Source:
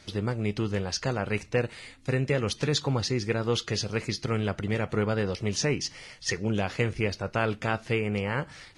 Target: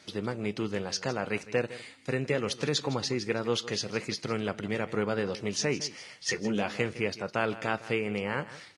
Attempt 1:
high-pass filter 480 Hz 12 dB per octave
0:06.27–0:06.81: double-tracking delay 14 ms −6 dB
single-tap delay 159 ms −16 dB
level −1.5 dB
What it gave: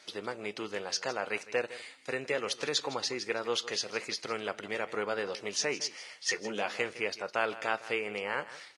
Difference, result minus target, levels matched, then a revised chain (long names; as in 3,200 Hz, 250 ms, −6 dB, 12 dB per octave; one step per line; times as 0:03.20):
125 Hz band −14.0 dB
high-pass filter 170 Hz 12 dB per octave
0:06.27–0:06.81: double-tracking delay 14 ms −6 dB
single-tap delay 159 ms −16 dB
level −1.5 dB